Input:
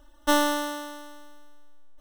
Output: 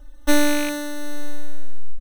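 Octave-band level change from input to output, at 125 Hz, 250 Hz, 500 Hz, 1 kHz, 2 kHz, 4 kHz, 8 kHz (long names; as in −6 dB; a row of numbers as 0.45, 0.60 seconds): can't be measured, +7.0 dB, +3.5 dB, −4.0 dB, +4.5 dB, +2.0 dB, +5.5 dB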